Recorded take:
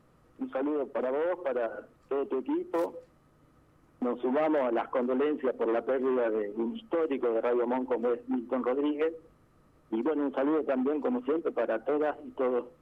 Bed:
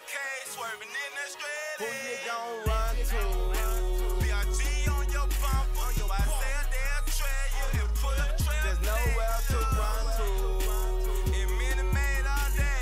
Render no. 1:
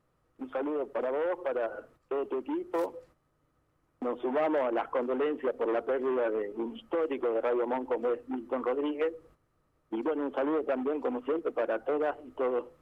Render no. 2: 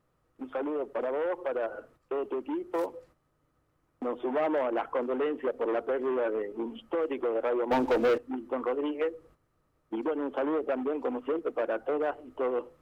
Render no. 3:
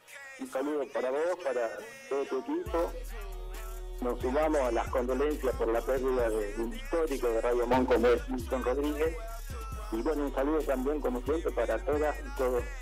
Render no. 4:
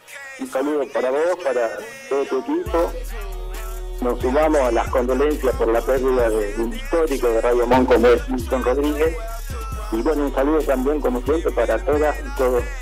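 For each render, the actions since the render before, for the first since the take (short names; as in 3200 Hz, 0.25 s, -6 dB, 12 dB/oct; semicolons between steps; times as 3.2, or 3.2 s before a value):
bell 220 Hz -6 dB 0.96 oct; gate -57 dBFS, range -9 dB
7.71–8.18 sample leveller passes 3
add bed -12.5 dB
gain +11 dB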